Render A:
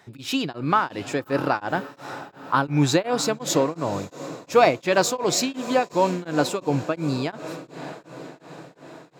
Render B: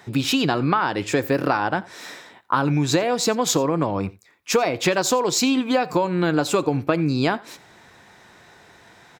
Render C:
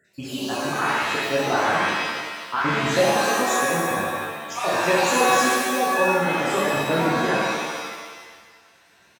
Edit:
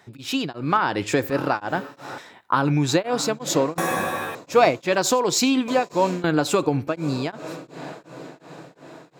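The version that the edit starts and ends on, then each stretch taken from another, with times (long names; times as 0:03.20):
A
0:00.77–0:01.30: punch in from B
0:02.18–0:02.89: punch in from B
0:03.78–0:04.35: punch in from C
0:04.95–0:05.68: punch in from B
0:06.24–0:06.88: punch in from B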